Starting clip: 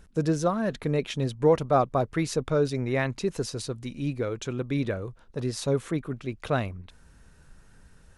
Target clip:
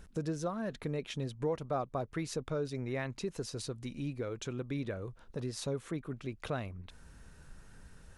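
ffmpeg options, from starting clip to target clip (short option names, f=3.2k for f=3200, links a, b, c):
-af "acompressor=threshold=-41dB:ratio=2"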